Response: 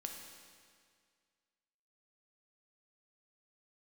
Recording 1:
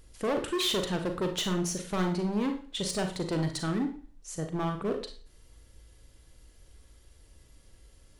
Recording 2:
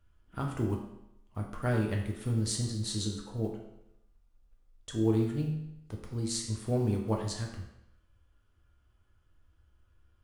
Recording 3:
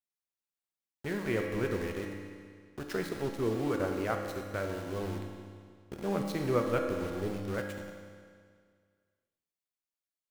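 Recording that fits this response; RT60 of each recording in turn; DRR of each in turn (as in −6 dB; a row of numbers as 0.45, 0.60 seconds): 3; 0.40, 0.85, 2.0 seconds; 5.5, 0.0, 2.0 decibels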